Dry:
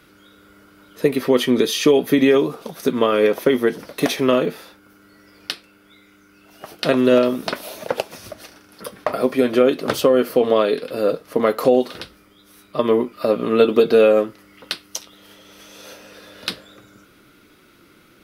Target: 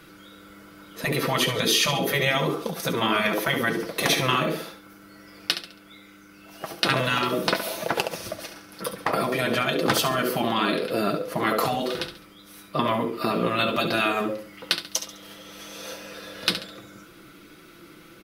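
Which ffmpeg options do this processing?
-af "aecho=1:1:6:0.42,aecho=1:1:69|138|207|276:0.299|0.107|0.0387|0.0139,afftfilt=real='re*lt(hypot(re,im),0.501)':imag='im*lt(hypot(re,im),0.501)':win_size=1024:overlap=0.75,volume=2dB"

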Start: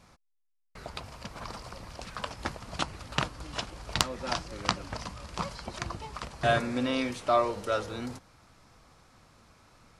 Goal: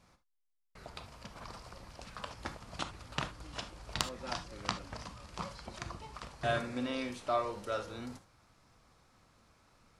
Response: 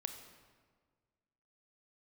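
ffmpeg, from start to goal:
-filter_complex "[1:a]atrim=start_sample=2205,atrim=end_sample=3528,asetrate=42777,aresample=44100[a];[0:a][a]afir=irnorm=-1:irlink=0,volume=-5dB"

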